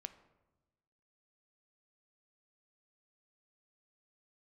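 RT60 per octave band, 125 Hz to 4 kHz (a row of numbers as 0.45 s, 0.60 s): 1.4 s, 1.3 s, 1.2 s, 1.0 s, 0.80 s, 0.65 s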